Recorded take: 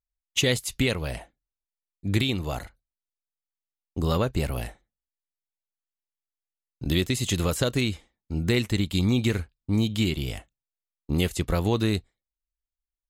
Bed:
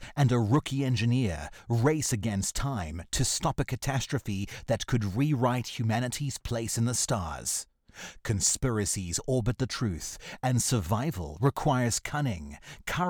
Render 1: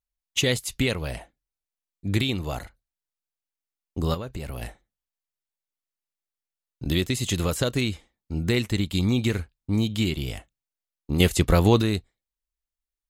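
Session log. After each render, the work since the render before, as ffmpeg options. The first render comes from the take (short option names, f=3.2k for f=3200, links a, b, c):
-filter_complex "[0:a]asettb=1/sr,asplit=3[a][b][c];[a]atrim=end=4.144[d];[b]atrim=start=4.14:end=4.62,asetpts=PTS-STARTPTS,afade=t=in:d=0.004:c=qsin,afade=t=out:st=0.476:d=0.004:c=qsin,acompressor=threshold=-30dB:ratio=5:attack=3.2:release=140:knee=1:detection=peak[e];[c]atrim=start=4.616[f];[d][e]acrossfade=d=0.004:c1=hsin:c2=qsin[g];[g][f]acrossfade=d=0.004:c1=qsin:c2=hsin,asettb=1/sr,asplit=3[h][i][j];[h]atrim=end=11.204[k];[i]atrim=start=11.2:end=11.82,asetpts=PTS-STARTPTS,afade=t=in:d=0.004:c=qsin,afade=t=out:st=0.616:d=0.004:c=qsin,acontrast=67[l];[j]atrim=start=11.816[m];[k][l]acrossfade=d=0.004:c1=hsin:c2=qsin[n];[n][m]acrossfade=d=0.004:c1=qsin:c2=hsin"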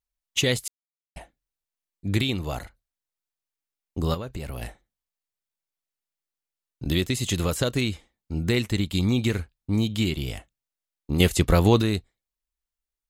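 -filter_complex "[0:a]asplit=3[a][b][c];[a]atrim=end=0.68,asetpts=PTS-STARTPTS,afade=t=out:st=0.676:d=0.004:c=hsin[d];[b]atrim=start=0.68:end=1.16,asetpts=PTS-STARTPTS,volume=0[e];[c]atrim=start=1.16,asetpts=PTS-STARTPTS,afade=t=in:d=0.004:c=hsin[f];[d][e][f]concat=n=3:v=0:a=1"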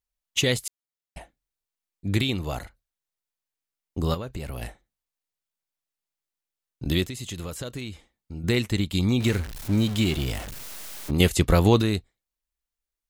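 -filter_complex "[0:a]asettb=1/sr,asplit=3[a][b][c];[a]atrim=end=7.064[d];[b]atrim=start=7.06:end=8.44,asetpts=PTS-STARTPTS,afade=t=in:d=0.004:c=qsin,afade=t=out:st=1.376:d=0.004:c=qsin,acompressor=threshold=-38dB:ratio=2:attack=3.2:release=140:knee=1:detection=peak[e];[c]atrim=start=8.436[f];[d][e]acrossfade=d=0.004:c1=hsin:c2=qsin[g];[g][f]acrossfade=d=0.004:c1=qsin:c2=hsin,asettb=1/sr,asplit=3[h][i][j];[h]atrim=end=9.204[k];[i]atrim=start=9.2:end=11.11,asetpts=PTS-STARTPTS,afade=t=in:d=0.004:c=qsin,afade=t=out:st=1.906:d=0.004:c=qsin,aeval=exprs='val(0)+0.5*0.0299*sgn(val(0))':c=same[l];[j]atrim=start=11.106[m];[k][l]acrossfade=d=0.004:c1=hsin:c2=qsin[n];[n][m]acrossfade=d=0.004:c1=qsin:c2=hsin"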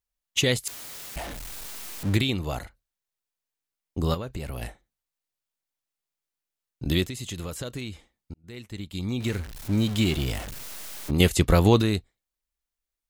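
-filter_complex "[0:a]asettb=1/sr,asplit=3[a][b][c];[a]atrim=end=0.674[d];[b]atrim=start=0.67:end=2.17,asetpts=PTS-STARTPTS,afade=t=in:d=0.004:c=qsin,afade=t=out:st=1.496:d=0.004:c=qsin,aeval=exprs='val(0)+0.5*0.0299*sgn(val(0))':c=same[e];[c]atrim=start=2.166[f];[d][e]acrossfade=d=0.004:c1=hsin:c2=qsin[g];[g][f]acrossfade=d=0.004:c1=qsin:c2=hsin,asplit=2[h][i];[h]atrim=end=8.34,asetpts=PTS-STARTPTS,afade=t=out:st=8.336:d=0.004:c=hsin[j];[i]atrim=start=8.34,asetpts=PTS-STARTPTS,afade=t=in:d=1.69[k];[j][k]concat=n=2:v=0:a=1"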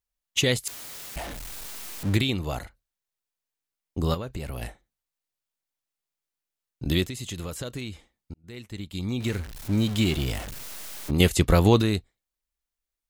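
-af anull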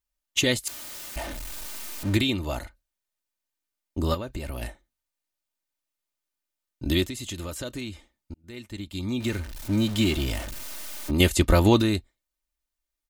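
-af "aecho=1:1:3.3:0.5"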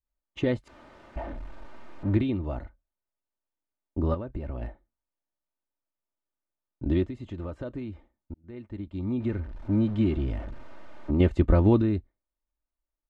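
-af "lowpass=1.1k,adynamicequalizer=threshold=0.00891:dfrequency=830:dqfactor=0.76:tfrequency=830:tqfactor=0.76:attack=5:release=100:ratio=0.375:range=4:mode=cutabove:tftype=bell"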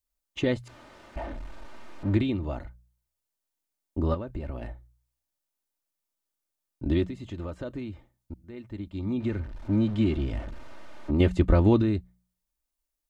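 -af "highshelf=f=3.4k:g=10.5,bandreject=f=60.5:t=h:w=4,bandreject=f=121:t=h:w=4,bandreject=f=181.5:t=h:w=4"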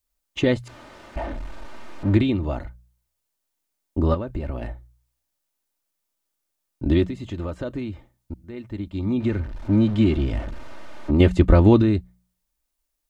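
-af "volume=6dB"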